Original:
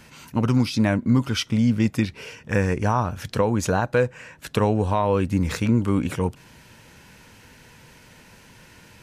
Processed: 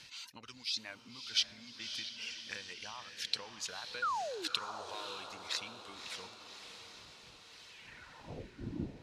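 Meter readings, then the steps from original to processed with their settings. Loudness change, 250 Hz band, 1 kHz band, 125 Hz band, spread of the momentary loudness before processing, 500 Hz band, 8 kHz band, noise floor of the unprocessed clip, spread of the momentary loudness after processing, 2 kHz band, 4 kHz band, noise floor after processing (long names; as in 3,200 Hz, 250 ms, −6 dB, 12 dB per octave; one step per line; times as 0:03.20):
−17.0 dB, −28.0 dB, −14.0 dB, −30.0 dB, 7 LU, −23.5 dB, −8.0 dB, −51 dBFS, 16 LU, −12.5 dB, −1.5 dB, −57 dBFS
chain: wind on the microphone 110 Hz −32 dBFS
reverb reduction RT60 1 s
low-shelf EQ 67 Hz +8.5 dB
downward compressor, threshold −27 dBFS, peak gain reduction 13.5 dB
sound drawn into the spectrogram fall, 0:04.02–0:04.48, 290–1,500 Hz −21 dBFS
band-pass filter sweep 4,100 Hz → 300 Hz, 0:07.67–0:08.60
on a send: feedback delay with all-pass diffusion 578 ms, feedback 58%, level −8.5 dB
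on the sum: level +6 dB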